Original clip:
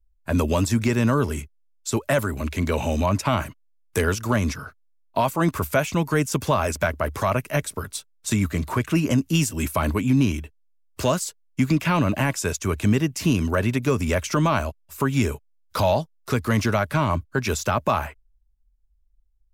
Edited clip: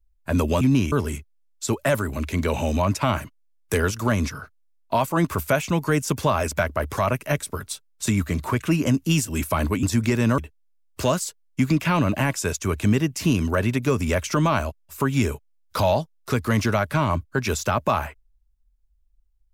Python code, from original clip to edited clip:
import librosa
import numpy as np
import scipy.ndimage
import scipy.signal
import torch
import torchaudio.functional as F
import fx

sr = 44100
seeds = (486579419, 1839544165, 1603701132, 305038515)

y = fx.edit(x, sr, fx.swap(start_s=0.61, length_s=0.55, other_s=10.07, other_length_s=0.31), tone=tone)